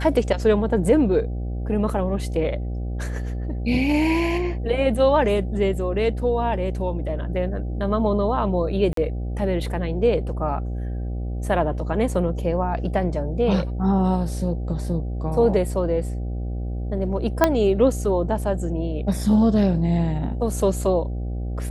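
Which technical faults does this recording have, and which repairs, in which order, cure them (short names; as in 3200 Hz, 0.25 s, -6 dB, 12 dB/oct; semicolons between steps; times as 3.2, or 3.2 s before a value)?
buzz 60 Hz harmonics 13 -27 dBFS
8.93–8.97 gap 43 ms
17.44 pop -3 dBFS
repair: de-click; de-hum 60 Hz, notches 13; interpolate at 8.93, 43 ms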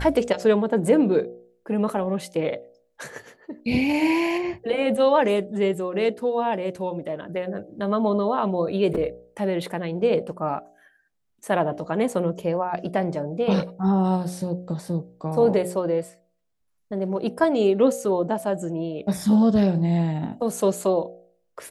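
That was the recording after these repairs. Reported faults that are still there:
none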